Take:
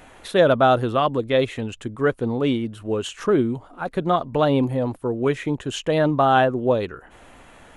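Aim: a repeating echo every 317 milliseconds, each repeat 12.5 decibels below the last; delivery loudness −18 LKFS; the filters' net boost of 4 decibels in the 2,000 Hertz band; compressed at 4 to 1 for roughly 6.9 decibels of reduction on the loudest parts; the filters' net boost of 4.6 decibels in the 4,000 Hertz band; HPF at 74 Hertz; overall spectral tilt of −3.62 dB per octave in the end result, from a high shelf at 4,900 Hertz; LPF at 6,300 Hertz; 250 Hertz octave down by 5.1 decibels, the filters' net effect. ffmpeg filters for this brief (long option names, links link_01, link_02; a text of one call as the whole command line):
ffmpeg -i in.wav -af "highpass=74,lowpass=6300,equalizer=frequency=250:width_type=o:gain=-6.5,equalizer=frequency=2000:width_type=o:gain=5,equalizer=frequency=4000:width_type=o:gain=5.5,highshelf=frequency=4900:gain=-3,acompressor=threshold=-19dB:ratio=4,aecho=1:1:317|634|951:0.237|0.0569|0.0137,volume=7.5dB" out.wav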